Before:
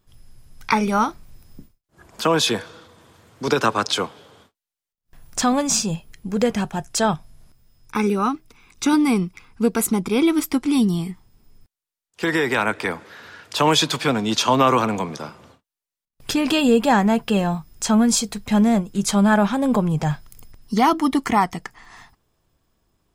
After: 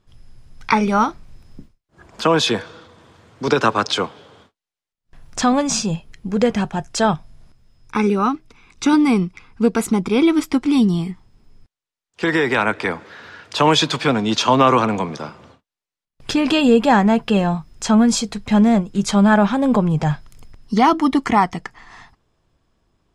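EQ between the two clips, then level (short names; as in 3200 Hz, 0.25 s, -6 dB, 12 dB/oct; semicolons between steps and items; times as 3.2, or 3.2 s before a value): air absorption 67 m; +3.0 dB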